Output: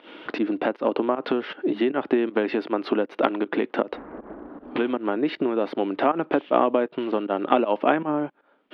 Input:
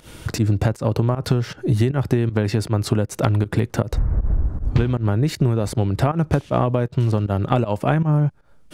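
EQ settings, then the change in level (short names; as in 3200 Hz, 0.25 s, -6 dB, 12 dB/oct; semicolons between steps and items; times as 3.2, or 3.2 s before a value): elliptic band-pass 270–3200 Hz, stop band 40 dB; +2.0 dB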